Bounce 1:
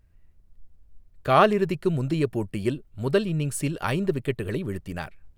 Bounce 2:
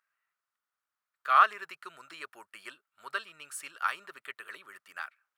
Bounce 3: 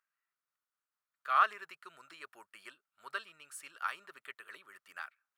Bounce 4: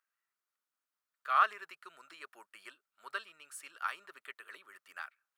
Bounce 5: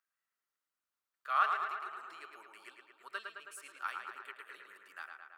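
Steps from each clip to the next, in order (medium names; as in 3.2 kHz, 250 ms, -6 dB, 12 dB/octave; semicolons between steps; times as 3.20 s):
resonant high-pass 1.3 kHz, resonance Q 4; trim -8.5 dB
random flutter of the level, depth 50%; trim -3 dB
high-pass 230 Hz 12 dB/octave
tape echo 109 ms, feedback 74%, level -4 dB, low-pass 3.5 kHz; trim -3 dB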